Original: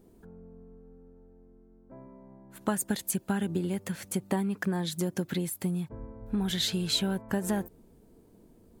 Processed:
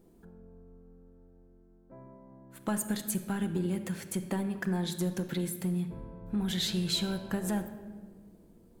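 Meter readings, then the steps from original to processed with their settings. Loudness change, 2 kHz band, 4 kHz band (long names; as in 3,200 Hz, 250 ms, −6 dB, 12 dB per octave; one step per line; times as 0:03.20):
−2.0 dB, −2.5 dB, −2.5 dB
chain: in parallel at −4 dB: hard clipping −24.5 dBFS, distortion −14 dB
on the sum: rectangular room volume 1,800 cubic metres, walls mixed, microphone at 0.76 metres
level −7 dB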